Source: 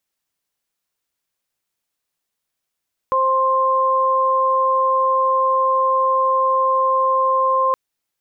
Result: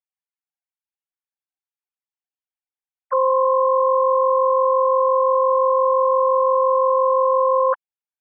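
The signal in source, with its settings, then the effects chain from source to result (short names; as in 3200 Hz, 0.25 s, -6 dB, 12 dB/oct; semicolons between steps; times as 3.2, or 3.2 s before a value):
steady additive tone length 4.62 s, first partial 526 Hz, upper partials 5 dB, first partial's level -20 dB
sine-wave speech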